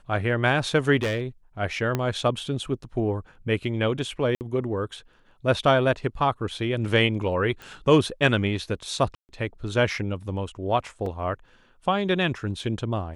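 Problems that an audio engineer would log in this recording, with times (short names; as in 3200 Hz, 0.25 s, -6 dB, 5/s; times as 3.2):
0.97–1.21 clipped -21.5 dBFS
1.95 pop -11 dBFS
4.35–4.41 gap 59 ms
7.62 pop
9.15–9.29 gap 0.139 s
11.06 gap 3 ms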